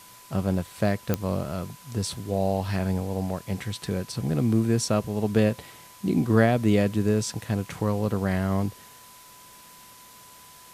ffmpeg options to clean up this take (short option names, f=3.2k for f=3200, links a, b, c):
-af "adeclick=t=4,bandreject=f=1k:w=30,afftdn=nr=21:nf=-49"